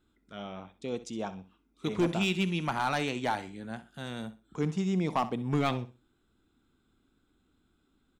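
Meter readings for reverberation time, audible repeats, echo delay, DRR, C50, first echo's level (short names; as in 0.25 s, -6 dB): none, 2, 64 ms, none, none, -15.0 dB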